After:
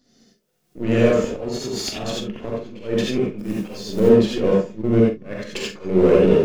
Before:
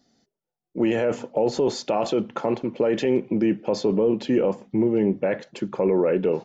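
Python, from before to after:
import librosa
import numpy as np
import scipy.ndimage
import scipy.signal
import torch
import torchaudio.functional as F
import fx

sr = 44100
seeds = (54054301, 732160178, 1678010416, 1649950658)

p1 = np.where(x < 0.0, 10.0 ** (-7.0 / 20.0) * x, x)
p2 = fx.recorder_agc(p1, sr, target_db=-18.0, rise_db_per_s=35.0, max_gain_db=30)
p3 = fx.peak_eq(p2, sr, hz=840.0, db=-10.5, octaves=0.66)
p4 = fx.auto_swell(p3, sr, attack_ms=212.0)
p5 = fx.notch_comb(p4, sr, f0_hz=510.0, at=(1.41, 2.03))
p6 = fx.step_gate(p5, sr, bpm=180, pattern='xxx.x.xx..xxx', floor_db=-60.0, edge_ms=4.5, at=(4.81, 5.82), fade=0.02)
p7 = fx.backlash(p6, sr, play_db=-26.0)
p8 = p6 + F.gain(torch.from_numpy(p7), -4.0).numpy()
p9 = fx.quant_companded(p8, sr, bits=6, at=(3.38, 3.99), fade=0.02)
p10 = p9 + fx.room_early_taps(p9, sr, ms=(43, 71), db=(-9.0, -17.5), dry=0)
p11 = fx.rev_gated(p10, sr, seeds[0], gate_ms=110, shape='rising', drr_db=-3.5)
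y = F.gain(torch.from_numpy(p11), 2.0).numpy()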